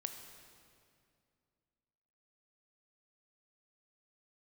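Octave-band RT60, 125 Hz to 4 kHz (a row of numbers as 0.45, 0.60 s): 2.8, 2.8, 2.5, 2.2, 2.0, 1.9 s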